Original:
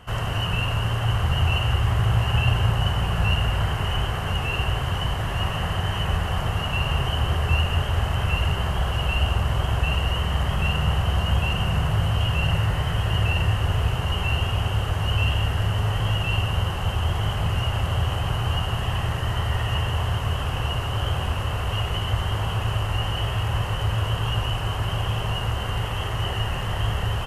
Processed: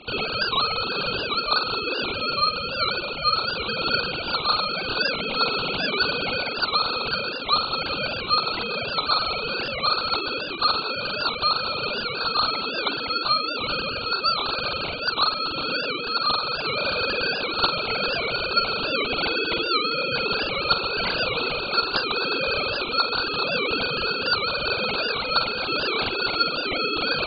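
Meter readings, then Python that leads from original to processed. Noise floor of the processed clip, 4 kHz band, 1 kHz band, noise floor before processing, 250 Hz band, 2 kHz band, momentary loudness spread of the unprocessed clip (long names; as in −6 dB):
−30 dBFS, +6.5 dB, +4.0 dB, −28 dBFS, −1.0 dB, +5.0 dB, 4 LU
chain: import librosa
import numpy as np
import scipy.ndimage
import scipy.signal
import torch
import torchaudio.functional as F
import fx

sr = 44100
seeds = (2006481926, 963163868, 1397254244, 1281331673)

y = fx.sine_speech(x, sr)
y = fx.rider(y, sr, range_db=10, speed_s=0.5)
y = y * np.sin(2.0 * np.pi * 1500.0 * np.arange(len(y)) / sr)
y = fx.echo_multitap(y, sr, ms=(46, 395), db=(-10.5, -15.5))
y = fx.record_warp(y, sr, rpm=78.0, depth_cents=160.0)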